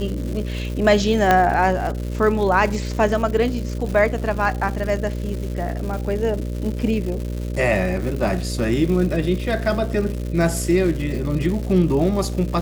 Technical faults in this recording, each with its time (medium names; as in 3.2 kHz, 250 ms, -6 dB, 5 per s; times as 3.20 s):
buzz 60 Hz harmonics 10 -26 dBFS
crackle 260 per s -28 dBFS
1.31 s: pop -3 dBFS